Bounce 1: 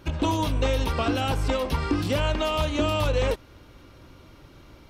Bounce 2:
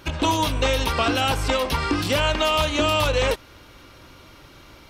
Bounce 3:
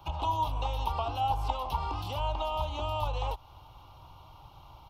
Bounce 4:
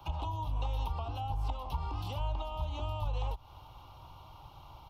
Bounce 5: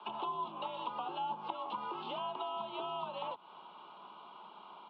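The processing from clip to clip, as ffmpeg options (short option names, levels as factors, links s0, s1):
-af "tiltshelf=f=660:g=-4.5,volume=1.58"
-filter_complex "[0:a]acrossover=split=83|230|640[s0][s1][s2][s3];[s0]acompressor=threshold=0.0316:ratio=4[s4];[s1]acompressor=threshold=0.00562:ratio=4[s5];[s2]acompressor=threshold=0.0316:ratio=4[s6];[s3]acompressor=threshold=0.0316:ratio=4[s7];[s4][s5][s6][s7]amix=inputs=4:normalize=0,firequalizer=gain_entry='entry(130,0);entry(220,-15);entry(530,-11);entry(820,8);entry(1200,-4);entry(1700,-26);entry(2900,-6);entry(4200,-11);entry(8400,-19);entry(12000,-8)':delay=0.05:min_phase=1,volume=0.794"
-filter_complex "[0:a]acrossover=split=270[s0][s1];[s1]acompressor=threshold=0.00794:ratio=3[s2];[s0][s2]amix=inputs=2:normalize=0"
-af "highpass=f=200:t=q:w=0.5412,highpass=f=200:t=q:w=1.307,lowpass=f=3500:t=q:w=0.5176,lowpass=f=3500:t=q:w=0.7071,lowpass=f=3500:t=q:w=1.932,afreqshift=60,volume=1.33"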